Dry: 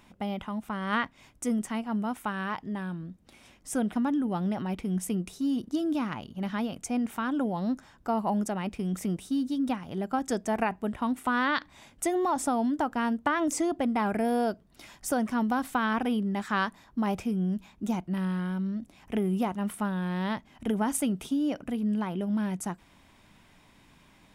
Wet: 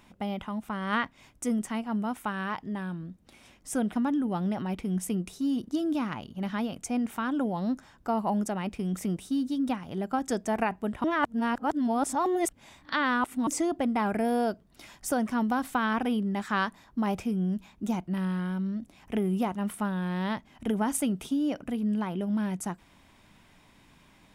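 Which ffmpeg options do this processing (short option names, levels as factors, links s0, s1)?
-filter_complex "[0:a]asplit=3[s0][s1][s2];[s0]atrim=end=11.042[s3];[s1]atrim=start=11.038:end=13.472,asetpts=PTS-STARTPTS,areverse[s4];[s2]atrim=start=13.468[s5];[s3][s4]acrossfade=d=0.004:c1=hsin:c2=hsin[s6];[s6][s5]acrossfade=d=0.004:c1=hsin:c2=hsin"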